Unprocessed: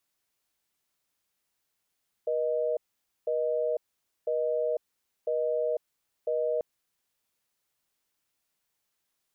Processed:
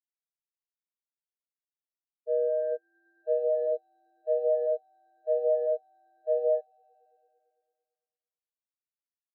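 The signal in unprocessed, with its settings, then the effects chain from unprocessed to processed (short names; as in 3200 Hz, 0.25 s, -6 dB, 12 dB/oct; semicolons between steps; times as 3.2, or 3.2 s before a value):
call progress tone busy tone, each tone -28 dBFS 4.34 s
sample leveller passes 5; swelling echo 0.112 s, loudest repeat 5, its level -11 dB; spectral expander 4:1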